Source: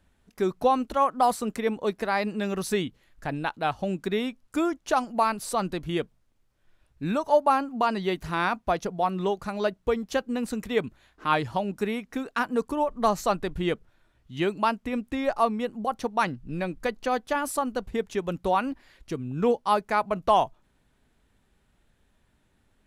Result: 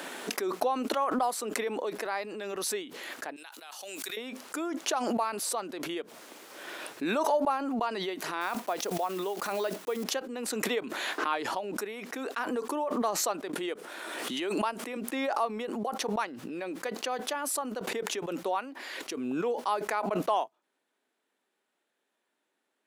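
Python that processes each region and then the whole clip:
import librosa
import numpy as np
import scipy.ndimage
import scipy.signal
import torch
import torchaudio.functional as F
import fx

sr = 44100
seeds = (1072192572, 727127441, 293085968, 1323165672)

y = fx.chain(x, sr, fx.differentiator(),
    fx.env_flatten(amount_pct=50), at=(3.36, 4.17))
y = fx.chain(y, sr, fx.block_float(bits=5),
    fx.high_shelf(hz=12000.0, db=5.0), at=(8.41, 10.05))
y = fx.chain(y, sr, fx.highpass(hz=170.0, slope=12),
    fx.peak_eq(hz=9300.0, db=7.5, octaves=0.39),
    fx.pre_swell(db_per_s=41.0), at=(13.53, 14.97))
y = scipy.signal.sosfilt(scipy.signal.butter(4, 310.0, 'highpass', fs=sr, output='sos'), y)
y = fx.pre_swell(y, sr, db_per_s=22.0)
y = F.gain(torch.from_numpy(y), -7.5).numpy()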